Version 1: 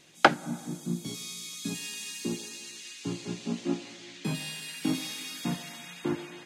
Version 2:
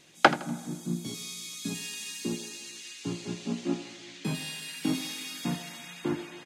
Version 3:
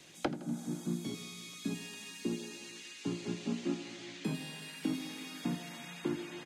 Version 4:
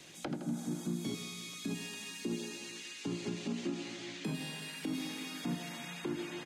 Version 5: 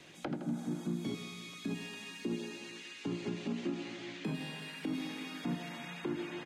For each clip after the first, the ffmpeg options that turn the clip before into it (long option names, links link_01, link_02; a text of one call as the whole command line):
ffmpeg -i in.wav -af "aecho=1:1:81|162|243:0.158|0.0571|0.0205" out.wav
ffmpeg -i in.wav -filter_complex "[0:a]acrossover=split=190|450|1100|2800[link_01][link_02][link_03][link_04][link_05];[link_01]acompressor=threshold=-48dB:ratio=4[link_06];[link_02]acompressor=threshold=-35dB:ratio=4[link_07];[link_03]acompressor=threshold=-55dB:ratio=4[link_08];[link_04]acompressor=threshold=-53dB:ratio=4[link_09];[link_05]acompressor=threshold=-54dB:ratio=4[link_10];[link_06][link_07][link_08][link_09][link_10]amix=inputs=5:normalize=0,volume=1.5dB" out.wav
ffmpeg -i in.wav -af "alimiter=level_in=6dB:limit=-24dB:level=0:latency=1:release=71,volume=-6dB,volume=2.5dB" out.wav
ffmpeg -i in.wav -af "bass=frequency=250:gain=-1,treble=frequency=4000:gain=-10,volume=1dB" out.wav